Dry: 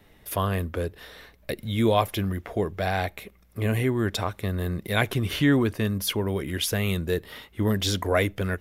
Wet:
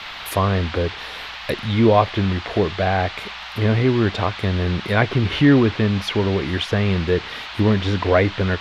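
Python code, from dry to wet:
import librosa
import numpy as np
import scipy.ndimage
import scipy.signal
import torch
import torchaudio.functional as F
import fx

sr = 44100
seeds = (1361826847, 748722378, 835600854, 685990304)

y = fx.env_lowpass_down(x, sr, base_hz=1900.0, full_db=-22.0)
y = fx.dmg_noise_band(y, sr, seeds[0], low_hz=690.0, high_hz=3900.0, level_db=-41.0)
y = y * 10.0 ** (7.0 / 20.0)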